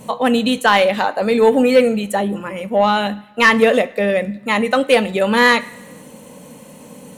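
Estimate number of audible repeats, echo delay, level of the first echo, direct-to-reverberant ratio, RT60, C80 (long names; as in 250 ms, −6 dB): no echo audible, no echo audible, no echo audible, 12.0 dB, 1.0 s, 21.5 dB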